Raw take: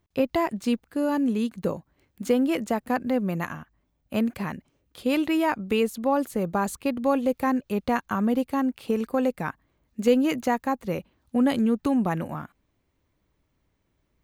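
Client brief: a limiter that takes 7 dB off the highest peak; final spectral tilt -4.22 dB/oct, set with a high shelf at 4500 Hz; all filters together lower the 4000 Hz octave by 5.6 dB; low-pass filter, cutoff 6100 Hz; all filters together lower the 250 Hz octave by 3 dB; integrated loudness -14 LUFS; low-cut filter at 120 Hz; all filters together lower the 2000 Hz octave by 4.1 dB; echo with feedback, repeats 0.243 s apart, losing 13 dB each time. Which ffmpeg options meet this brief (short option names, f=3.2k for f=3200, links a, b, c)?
-af "highpass=120,lowpass=6.1k,equalizer=f=250:t=o:g=-3,equalizer=f=2k:t=o:g=-4,equalizer=f=4k:t=o:g=-8.5,highshelf=f=4.5k:g=5,alimiter=limit=-18.5dB:level=0:latency=1,aecho=1:1:243|486|729:0.224|0.0493|0.0108,volume=15.5dB"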